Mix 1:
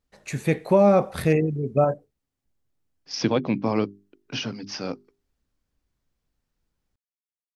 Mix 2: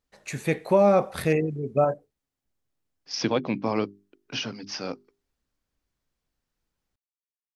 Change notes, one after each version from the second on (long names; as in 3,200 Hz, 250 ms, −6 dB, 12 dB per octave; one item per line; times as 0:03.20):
master: add low-shelf EQ 310 Hz −6 dB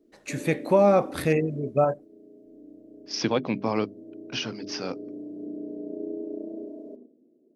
background: unmuted
reverb: on, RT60 0.60 s